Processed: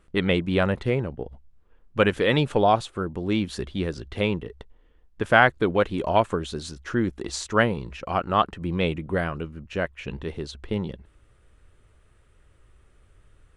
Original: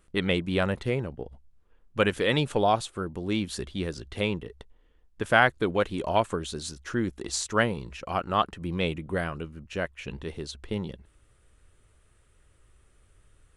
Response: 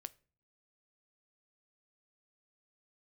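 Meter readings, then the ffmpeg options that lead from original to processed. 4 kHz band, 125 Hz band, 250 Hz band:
+1.0 dB, +4.0 dB, +4.0 dB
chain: -af "lowpass=f=3.3k:p=1,volume=4dB"

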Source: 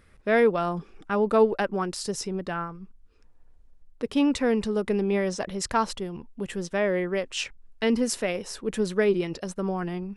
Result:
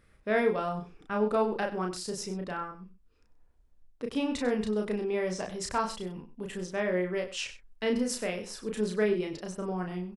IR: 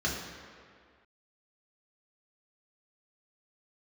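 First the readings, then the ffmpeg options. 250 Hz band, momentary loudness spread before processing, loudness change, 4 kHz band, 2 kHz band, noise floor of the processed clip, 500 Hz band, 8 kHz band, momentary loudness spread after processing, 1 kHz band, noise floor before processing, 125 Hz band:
-5.5 dB, 12 LU, -5.0 dB, -4.5 dB, -4.5 dB, -63 dBFS, -5.0 dB, -4.5 dB, 11 LU, -4.5 dB, -56 dBFS, -5.0 dB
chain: -filter_complex "[0:a]asplit=2[a][b];[b]adelay=33,volume=-3dB[c];[a][c]amix=inputs=2:normalize=0,asplit=2[d][e];[e]aecho=0:1:96:0.188[f];[d][f]amix=inputs=2:normalize=0,volume=-6.5dB"

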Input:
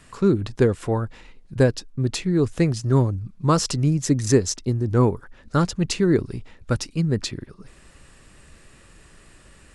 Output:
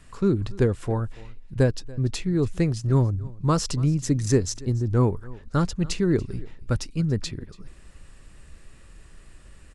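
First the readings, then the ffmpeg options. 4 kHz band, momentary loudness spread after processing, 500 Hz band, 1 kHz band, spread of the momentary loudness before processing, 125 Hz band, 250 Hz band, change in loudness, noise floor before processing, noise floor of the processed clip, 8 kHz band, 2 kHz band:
-4.5 dB, 11 LU, -4.0 dB, -4.5 dB, 8 LU, -1.0 dB, -3.0 dB, -2.5 dB, -52 dBFS, -49 dBFS, -4.5 dB, -4.5 dB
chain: -af "lowshelf=f=80:g=12,aecho=1:1:285:0.0841,volume=-4.5dB"

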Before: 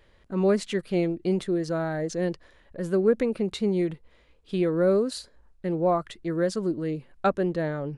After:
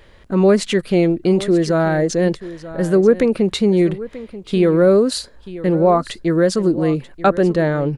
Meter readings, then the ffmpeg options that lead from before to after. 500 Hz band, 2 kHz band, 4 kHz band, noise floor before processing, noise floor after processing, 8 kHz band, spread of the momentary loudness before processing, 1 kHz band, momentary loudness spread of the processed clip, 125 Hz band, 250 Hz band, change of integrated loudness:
+10.0 dB, +10.5 dB, +11.5 dB, -60 dBFS, -45 dBFS, +11.5 dB, 10 LU, +9.5 dB, 10 LU, +10.5 dB, +10.5 dB, +10.0 dB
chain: -filter_complex "[0:a]asplit=2[a][b];[b]alimiter=limit=-22dB:level=0:latency=1:release=100,volume=0dB[c];[a][c]amix=inputs=2:normalize=0,aecho=1:1:935:0.158,volume=6dB"

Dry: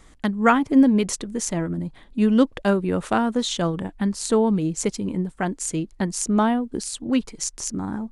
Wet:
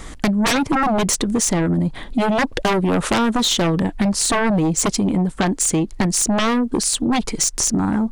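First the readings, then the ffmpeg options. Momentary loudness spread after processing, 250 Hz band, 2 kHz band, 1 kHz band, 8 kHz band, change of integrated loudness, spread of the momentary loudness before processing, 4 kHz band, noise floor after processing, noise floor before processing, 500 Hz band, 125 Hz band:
3 LU, +2.0 dB, +7.0 dB, +4.0 dB, +9.5 dB, +4.0 dB, 10 LU, +10.0 dB, -36 dBFS, -50 dBFS, +2.0 dB, +6.0 dB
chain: -af "aeval=exprs='0.708*sin(PI/2*7.08*val(0)/0.708)':c=same,acompressor=threshold=-12dB:ratio=5,volume=-4.5dB"

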